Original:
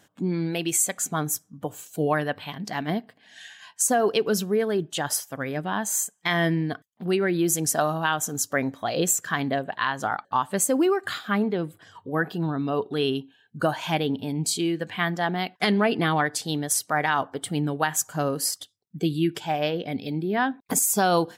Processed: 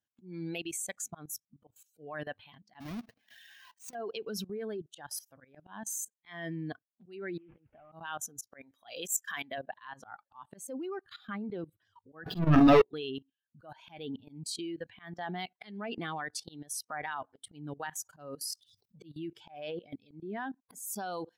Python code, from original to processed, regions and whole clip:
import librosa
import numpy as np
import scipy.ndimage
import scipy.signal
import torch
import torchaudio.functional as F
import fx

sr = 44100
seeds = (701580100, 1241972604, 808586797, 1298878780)

y = fx.chain(x, sr, fx.halfwave_hold(),
    fx.over_compress(threshold_db=-27.0, ratio=-1.0), at=(2.8, 3.95))
y = fx.chain(y, sr, fx.cvsd(bps=16000),
    fx.over_compress(threshold_db=-33.0, ratio=-1.0),
    fx.air_absorb(metres=56.0), at=(7.37, 7.92))
y = fx.chain(y, sr, fx.tilt_eq(slope=3.0),
    fx.notch(hz=4300.0, q=5.3), at=(8.61, 9.58))
y = fx.chain(y, sr, fx.low_shelf(hz=150.0, db=9.0),
    fx.leveller(passes=5),
    fx.doubler(ms=46.0, db=-7.0), at=(12.26, 12.82))
y = fx.chain(y, sr, fx.hum_notches(base_hz=60, count=3),
    fx.leveller(passes=2),
    fx.sustainer(db_per_s=33.0), at=(18.55, 19.02))
y = fx.bin_expand(y, sr, power=1.5)
y = fx.level_steps(y, sr, step_db=19)
y = fx.auto_swell(y, sr, attack_ms=221.0)
y = F.gain(torch.from_numpy(y), 1.0).numpy()